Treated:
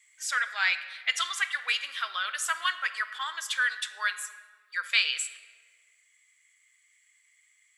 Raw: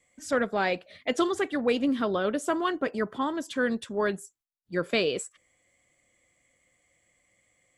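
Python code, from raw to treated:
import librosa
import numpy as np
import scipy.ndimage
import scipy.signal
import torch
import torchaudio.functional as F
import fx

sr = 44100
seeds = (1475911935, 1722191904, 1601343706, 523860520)

p1 = scipy.signal.sosfilt(scipy.signal.butter(4, 1500.0, 'highpass', fs=sr, output='sos'), x)
p2 = fx.rider(p1, sr, range_db=10, speed_s=2.0)
p3 = p1 + F.gain(torch.from_numpy(p2), 2.0).numpy()
y = fx.room_shoebox(p3, sr, seeds[0], volume_m3=1900.0, walls='mixed', distance_m=0.59)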